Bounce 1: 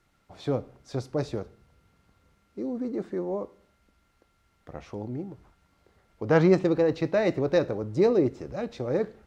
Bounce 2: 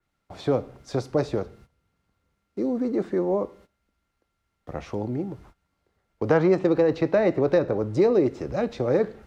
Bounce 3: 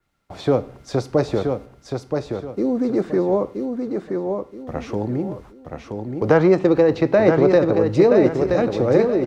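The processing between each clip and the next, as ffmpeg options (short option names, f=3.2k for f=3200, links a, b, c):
-filter_complex "[0:a]agate=range=-16dB:threshold=-56dB:ratio=16:detection=peak,acrossover=split=290|1800[a][b][c];[a]acompressor=threshold=-36dB:ratio=4[d];[b]acompressor=threshold=-25dB:ratio=4[e];[c]acompressor=threshold=-49dB:ratio=4[f];[d][e][f]amix=inputs=3:normalize=0,adynamicequalizer=threshold=0.00178:dfrequency=4500:dqfactor=0.7:tfrequency=4500:tqfactor=0.7:attack=5:release=100:ratio=0.375:range=2:mode=cutabove:tftype=highshelf,volume=7dB"
-af "aecho=1:1:975|1950|2925|3900:0.562|0.174|0.054|0.0168,volume=5dB"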